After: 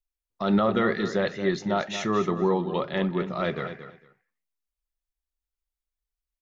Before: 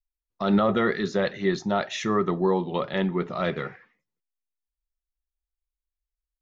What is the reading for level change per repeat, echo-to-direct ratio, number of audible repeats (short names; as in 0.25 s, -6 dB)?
-15.0 dB, -11.0 dB, 2